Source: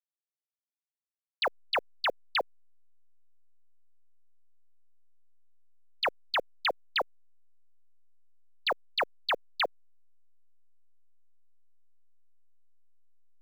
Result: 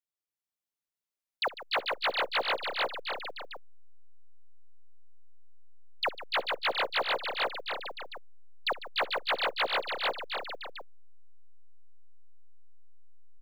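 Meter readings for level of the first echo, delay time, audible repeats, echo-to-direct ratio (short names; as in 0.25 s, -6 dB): -20.0 dB, 62 ms, 16, 1.5 dB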